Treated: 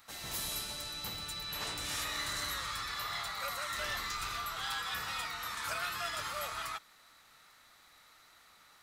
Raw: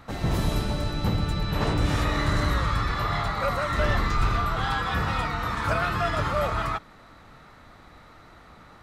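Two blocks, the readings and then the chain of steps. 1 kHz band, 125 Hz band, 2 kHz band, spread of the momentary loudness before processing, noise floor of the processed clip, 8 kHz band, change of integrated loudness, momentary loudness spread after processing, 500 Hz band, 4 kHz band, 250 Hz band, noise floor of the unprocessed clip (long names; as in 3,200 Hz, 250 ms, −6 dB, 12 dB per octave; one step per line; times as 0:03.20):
−12.5 dB, −26.0 dB, −8.5 dB, 3 LU, −62 dBFS, +3.5 dB, −10.5 dB, 4 LU, −18.0 dB, −2.0 dB, −23.5 dB, −51 dBFS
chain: first-order pre-emphasis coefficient 0.97
level +3.5 dB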